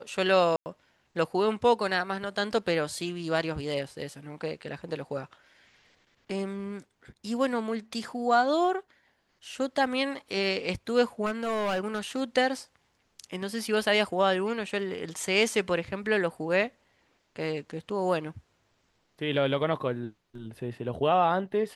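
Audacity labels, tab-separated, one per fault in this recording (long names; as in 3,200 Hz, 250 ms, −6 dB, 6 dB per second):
0.560000	0.660000	drop-out 99 ms
11.250000	12.220000	clipping −25 dBFS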